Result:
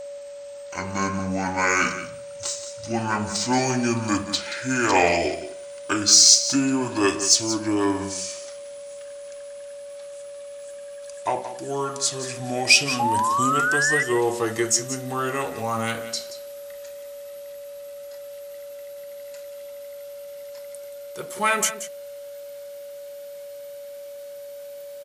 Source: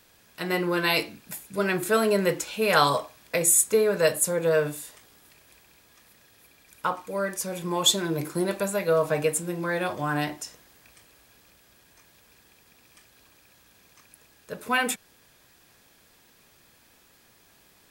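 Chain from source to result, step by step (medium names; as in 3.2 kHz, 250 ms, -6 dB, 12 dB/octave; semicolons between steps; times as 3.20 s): gliding tape speed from 52% -> 91%; tilt EQ +2 dB/octave; whistle 570 Hz -36 dBFS; in parallel at -8.5 dB: saturation -19.5 dBFS, distortion -8 dB; on the sum: painted sound rise, 12.99–14.03 s, 810–2000 Hz -22 dBFS; on a send: delay 178 ms -12.5 dB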